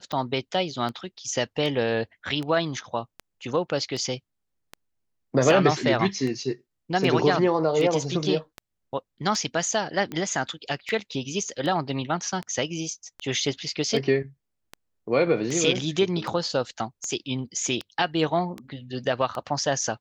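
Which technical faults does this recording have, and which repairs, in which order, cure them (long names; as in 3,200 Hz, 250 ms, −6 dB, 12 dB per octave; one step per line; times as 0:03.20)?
scratch tick 78 rpm −19 dBFS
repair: click removal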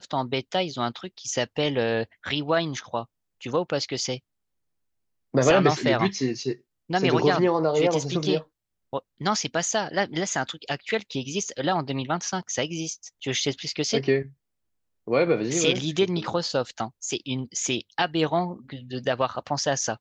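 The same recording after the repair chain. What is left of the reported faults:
none of them is left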